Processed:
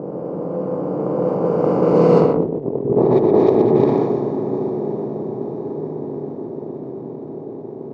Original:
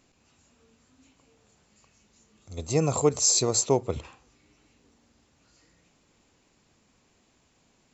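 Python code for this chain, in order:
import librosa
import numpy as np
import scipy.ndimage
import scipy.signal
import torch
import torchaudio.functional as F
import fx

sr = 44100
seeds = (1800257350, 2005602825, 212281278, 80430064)

p1 = fx.bin_compress(x, sr, power=0.2)
p2 = fx.doppler_pass(p1, sr, speed_mps=39, closest_m=18.0, pass_at_s=2.48)
p3 = fx.lowpass(p2, sr, hz=1000.0, slope=6)
p4 = np.sign(p3) * np.maximum(np.abs(p3) - 10.0 ** (-48.5 / 20.0), 0.0)
p5 = p3 + F.gain(torch.from_numpy(p4), -5.0).numpy()
p6 = scipy.signal.sosfilt(scipy.signal.butter(4, 160.0, 'highpass', fs=sr, output='sos'), p5)
p7 = fx.env_lowpass_down(p6, sr, base_hz=590.0, full_db=-15.0)
p8 = fx.low_shelf(p7, sr, hz=360.0, db=7.0)
p9 = fx.over_compress(p8, sr, threshold_db=-21.0, ratio=-0.5)
p10 = fx.dmg_crackle(p9, sr, seeds[0], per_s=130.0, level_db=-38.0)
p11 = p10 + fx.echo_single(p10, sr, ms=123, db=-3.5, dry=0)
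p12 = fx.env_lowpass(p11, sr, base_hz=600.0, full_db=-8.5)
y = F.gain(torch.from_numpy(p12), 6.0).numpy()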